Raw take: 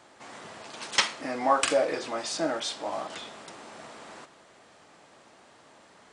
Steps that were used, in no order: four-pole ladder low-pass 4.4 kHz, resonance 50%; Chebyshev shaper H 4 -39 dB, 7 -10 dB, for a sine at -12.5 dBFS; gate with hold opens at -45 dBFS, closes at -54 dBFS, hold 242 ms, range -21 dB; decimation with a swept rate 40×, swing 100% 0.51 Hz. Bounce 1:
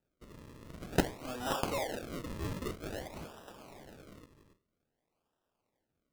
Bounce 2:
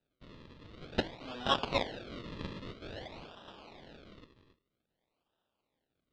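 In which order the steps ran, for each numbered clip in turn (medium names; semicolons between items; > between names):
four-pole ladder low-pass > Chebyshev shaper > gate with hold > decimation with a swept rate; Chebyshev shaper > decimation with a swept rate > four-pole ladder low-pass > gate with hold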